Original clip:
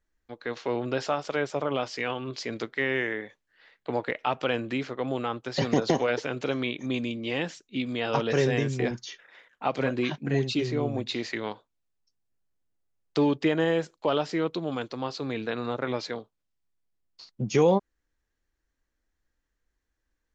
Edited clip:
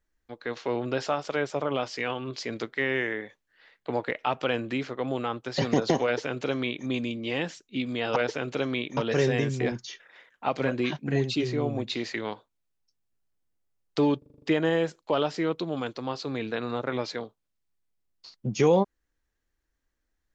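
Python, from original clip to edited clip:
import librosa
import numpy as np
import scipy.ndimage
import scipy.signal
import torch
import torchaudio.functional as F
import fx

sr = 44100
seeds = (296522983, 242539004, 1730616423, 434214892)

y = fx.edit(x, sr, fx.duplicate(start_s=6.05, length_s=0.81, to_s=8.16),
    fx.stutter(start_s=13.37, slice_s=0.04, count=7), tone=tone)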